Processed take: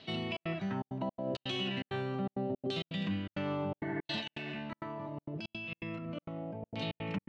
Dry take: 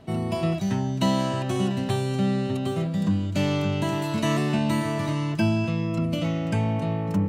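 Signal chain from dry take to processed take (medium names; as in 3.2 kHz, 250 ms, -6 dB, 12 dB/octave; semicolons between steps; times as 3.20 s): dynamic bell 1.8 kHz, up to -5 dB, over -43 dBFS, Q 0.91; LFO low-pass saw down 0.74 Hz 500–4300 Hz; frequency weighting D; peak limiter -19 dBFS, peak gain reduction 11 dB; 3.82–4.52 s: spectral replace 550–2200 Hz after; trance gate "xxxx.xxxx.xx.xx." 165 bpm -60 dB; 4.20–6.82 s: compressor with a negative ratio -33 dBFS, ratio -1; trim -7.5 dB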